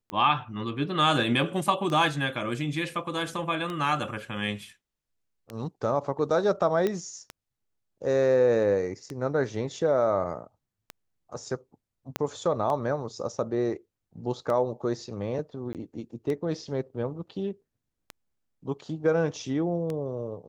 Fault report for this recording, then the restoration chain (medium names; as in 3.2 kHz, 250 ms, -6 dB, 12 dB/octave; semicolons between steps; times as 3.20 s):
tick 33 1/3 rpm -20 dBFS
6.87 s: pop -15 dBFS
12.16 s: pop -12 dBFS
15.73–15.75 s: dropout 18 ms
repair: de-click; interpolate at 15.73 s, 18 ms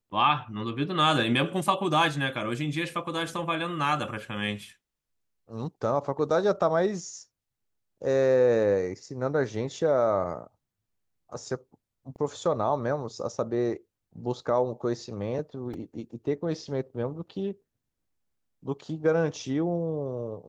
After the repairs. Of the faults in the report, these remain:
12.16 s: pop